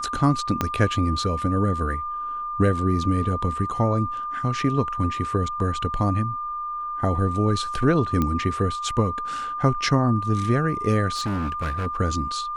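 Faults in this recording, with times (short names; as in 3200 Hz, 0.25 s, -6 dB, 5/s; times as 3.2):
tone 1200 Hz -27 dBFS
0.61 pop -8 dBFS
8.22 pop -11 dBFS
11.14–11.87 clipped -22.5 dBFS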